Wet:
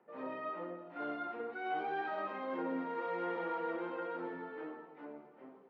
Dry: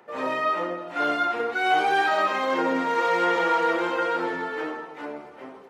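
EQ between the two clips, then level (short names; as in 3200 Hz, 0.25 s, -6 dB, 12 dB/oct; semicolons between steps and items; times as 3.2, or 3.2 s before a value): band-pass 180 Hz, Q 1.2; air absorption 260 m; tilt +4.5 dB/oct; +1.0 dB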